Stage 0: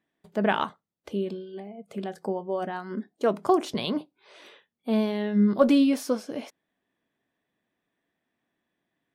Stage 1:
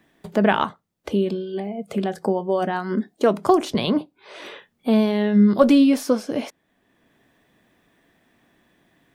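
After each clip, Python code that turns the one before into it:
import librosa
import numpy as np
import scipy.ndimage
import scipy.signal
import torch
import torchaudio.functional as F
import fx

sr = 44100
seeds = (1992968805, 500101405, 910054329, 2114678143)

y = fx.low_shelf(x, sr, hz=88.0, db=9.0)
y = fx.band_squash(y, sr, depth_pct=40)
y = y * librosa.db_to_amplitude(6.0)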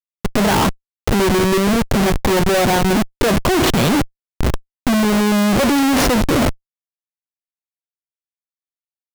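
y = fx.schmitt(x, sr, flips_db=-30.5)
y = y * librosa.db_to_amplitude(8.0)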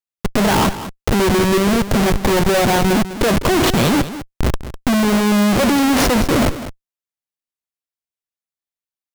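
y = x + 10.0 ** (-13.0 / 20.0) * np.pad(x, (int(202 * sr / 1000.0), 0))[:len(x)]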